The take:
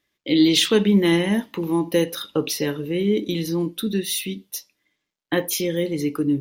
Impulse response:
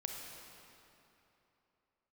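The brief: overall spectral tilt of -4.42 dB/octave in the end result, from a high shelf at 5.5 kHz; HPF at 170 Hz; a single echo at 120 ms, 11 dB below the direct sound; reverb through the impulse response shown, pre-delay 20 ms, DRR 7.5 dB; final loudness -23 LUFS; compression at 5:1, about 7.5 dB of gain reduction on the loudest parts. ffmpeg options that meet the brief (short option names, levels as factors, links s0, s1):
-filter_complex "[0:a]highpass=170,highshelf=f=5500:g=-5,acompressor=threshold=0.0891:ratio=5,aecho=1:1:120:0.282,asplit=2[s0][s1];[1:a]atrim=start_sample=2205,adelay=20[s2];[s1][s2]afir=irnorm=-1:irlink=0,volume=0.422[s3];[s0][s3]amix=inputs=2:normalize=0,volume=1.33"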